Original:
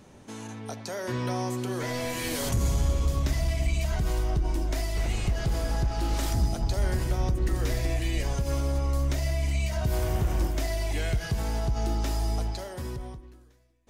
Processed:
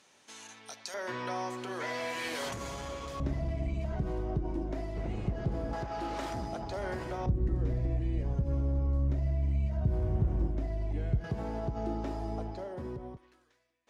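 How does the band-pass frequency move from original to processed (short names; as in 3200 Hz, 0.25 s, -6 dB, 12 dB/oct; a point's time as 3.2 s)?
band-pass, Q 0.57
4200 Hz
from 0.94 s 1400 Hz
from 3.2 s 270 Hz
from 5.73 s 800 Hz
from 7.26 s 140 Hz
from 11.24 s 370 Hz
from 13.17 s 2000 Hz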